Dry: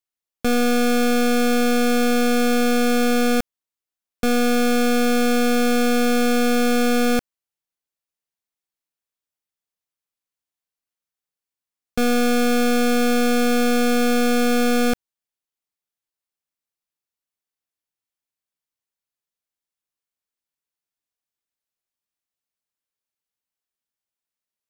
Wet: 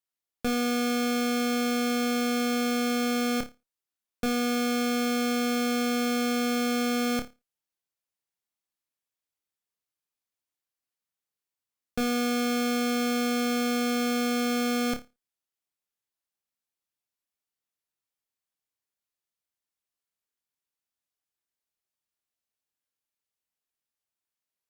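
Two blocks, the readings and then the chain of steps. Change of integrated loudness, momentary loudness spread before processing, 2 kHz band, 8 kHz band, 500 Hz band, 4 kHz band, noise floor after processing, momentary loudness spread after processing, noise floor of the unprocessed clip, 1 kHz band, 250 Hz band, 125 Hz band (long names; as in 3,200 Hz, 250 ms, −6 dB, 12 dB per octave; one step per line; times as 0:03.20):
−7.5 dB, 4 LU, −8.0 dB, −6.5 dB, −10.0 dB, −5.0 dB, below −85 dBFS, 4 LU, below −85 dBFS, −7.5 dB, −7.0 dB, can't be measured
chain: harmonic generator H 5 −17 dB, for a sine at −17 dBFS
on a send: flutter between parallel walls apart 4.8 metres, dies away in 0.23 s
on the sum: level −7 dB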